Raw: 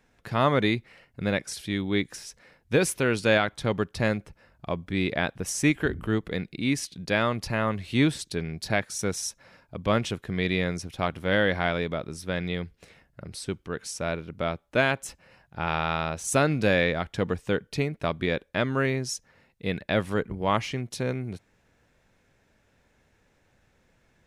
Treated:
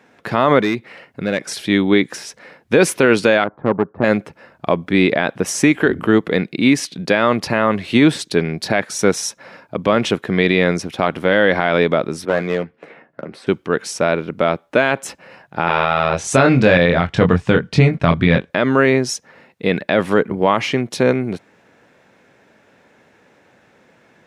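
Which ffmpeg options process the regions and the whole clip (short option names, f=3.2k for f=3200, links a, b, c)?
-filter_complex "[0:a]asettb=1/sr,asplit=3[a][b][c];[a]atrim=end=0.614[d];[b]atrim=start=0.61:end=1.42,asetpts=PTS-STARTPTS,afade=t=in:d=0.004:c=qsin,afade=t=out:st=0.806:d=0.004:c=qsin,acompressor=threshold=-39dB:ratio=1.5:attack=3.2:release=140:knee=1:detection=peak,asoftclip=type=hard:threshold=-26dB[e];[c]atrim=start=1.416[f];[d][e]acrossfade=d=0.004:c1=hsin:c2=qsin[g];[g][f]acrossfade=d=0.004:c1=qsin:c2=hsin,asettb=1/sr,asplit=3[h][i][j];[h]atrim=end=3.444[k];[i]atrim=start=3.44:end=4.04,asetpts=PTS-STARTPTS,afade=t=in:d=0.004:c=qsin,afade=t=out:st=0.596:d=0.004:c=qsin,lowpass=f=1.2k:w=0.5412,lowpass=f=1.2k:w=1.3066,aeval=exprs='(tanh(12.6*val(0)+0.75)-tanh(0.75))/12.6':c=same[l];[j]atrim=start=4.036[m];[k][l]acrossfade=d=0.004:c1=hsin:c2=qsin[n];[n][m]acrossfade=d=0.004:c1=qsin:c2=hsin,asettb=1/sr,asplit=3[o][p][q];[o]atrim=end=12.254[r];[p]atrim=start=12.25:end=13.47,asetpts=PTS-STARTPTS,afade=t=in:d=0.004:c=qsin,afade=t=out:st=1.216:d=0.004:c=qsin,acrossover=split=180 2500:gain=0.2 1 0.112[s][t][u];[s][t][u]amix=inputs=3:normalize=0,aeval=exprs='clip(val(0),-1,0.0237)':c=same,asplit=2[v][w];[w]adelay=13,volume=-9.5dB[x];[v][x]amix=inputs=2:normalize=0,atrim=end_sample=53802[y];[q]atrim=start=13.466[z];[r][y]acrossfade=d=0.004:c1=hsin:c2=qsin[aa];[aa][z]acrossfade=d=0.004:c1=qsin:c2=hsin,asettb=1/sr,asplit=3[ab][ac][ad];[ab]atrim=end=15.654[ae];[ac]atrim=start=15.65:end=18.5,asetpts=PTS-STARTPTS,afade=t=in:d=0.004:c=qsin,afade=t=out:st=2.846:d=0.004:c=qsin,lowpass=7.7k,asubboost=boost=11.5:cutoff=130,asplit=2[af][ag];[ag]adelay=23,volume=-4.5dB[ah];[af][ah]amix=inputs=2:normalize=0,atrim=end_sample=125685[ai];[ad]atrim=start=18.496[aj];[ae][ai]acrossfade=d=0.004:c1=hsin:c2=qsin[ak];[ak][aj]acrossfade=d=0.004:c1=qsin:c2=hsin,highpass=210,highshelf=f=4.1k:g=-11,alimiter=level_in=17dB:limit=-1dB:release=50:level=0:latency=1,volume=-1dB"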